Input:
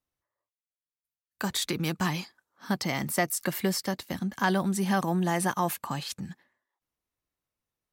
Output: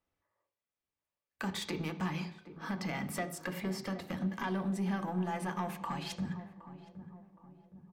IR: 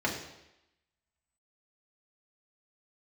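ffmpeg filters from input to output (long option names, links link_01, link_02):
-filter_complex "[0:a]lowpass=frequency=3300:poles=1,acompressor=threshold=-36dB:ratio=6,asoftclip=type=tanh:threshold=-33.5dB,asplit=2[link_01][link_02];[link_02]adelay=767,lowpass=frequency=830:poles=1,volume=-12.5dB,asplit=2[link_03][link_04];[link_04]adelay=767,lowpass=frequency=830:poles=1,volume=0.53,asplit=2[link_05][link_06];[link_06]adelay=767,lowpass=frequency=830:poles=1,volume=0.53,asplit=2[link_07][link_08];[link_08]adelay=767,lowpass=frequency=830:poles=1,volume=0.53,asplit=2[link_09][link_10];[link_10]adelay=767,lowpass=frequency=830:poles=1,volume=0.53[link_11];[link_01][link_03][link_05][link_07][link_09][link_11]amix=inputs=6:normalize=0,asplit=2[link_12][link_13];[1:a]atrim=start_sample=2205,asetrate=57330,aresample=44100,lowpass=4900[link_14];[link_13][link_14]afir=irnorm=-1:irlink=0,volume=-9.5dB[link_15];[link_12][link_15]amix=inputs=2:normalize=0,volume=2dB"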